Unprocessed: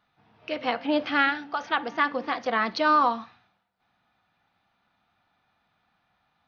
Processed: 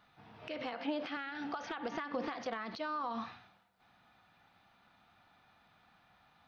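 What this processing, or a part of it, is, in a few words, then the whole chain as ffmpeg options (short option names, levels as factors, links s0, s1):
de-esser from a sidechain: -filter_complex "[0:a]asplit=2[s0][s1];[s1]highpass=f=5900:p=1,apad=whole_len=285517[s2];[s0][s2]sidechaincompress=threshold=0.00158:ratio=6:attack=3.7:release=63,asettb=1/sr,asplit=3[s3][s4][s5];[s3]atrim=end=0.734[s6];[s4]atrim=start=0.73:end=1.17,asetpts=PTS-STARTPTS,afade=t=in:d=0.004:c=qsin,afade=t=out:st=0.436:d=0.004:c=qsin,highpass=190[s7];[s5]atrim=start=1.166[s8];[s6][s7]acrossfade=d=0.004:c1=hsin:c2=qsin[s9];[s9][s8]acrossfade=d=0.004:c1=qsin:c2=hsin,volume=1.68"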